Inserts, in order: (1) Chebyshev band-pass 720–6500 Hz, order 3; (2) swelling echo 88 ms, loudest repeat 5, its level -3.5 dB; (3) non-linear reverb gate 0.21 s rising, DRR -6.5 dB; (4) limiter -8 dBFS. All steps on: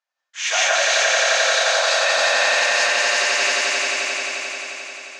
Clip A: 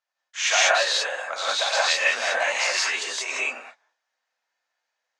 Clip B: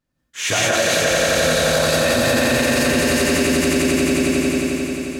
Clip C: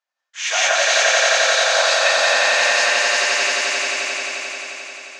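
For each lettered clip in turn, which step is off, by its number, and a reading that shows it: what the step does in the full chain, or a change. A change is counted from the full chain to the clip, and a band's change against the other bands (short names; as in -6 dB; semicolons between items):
2, crest factor change +6.0 dB; 1, 500 Hz band +8.0 dB; 4, crest factor change +3.5 dB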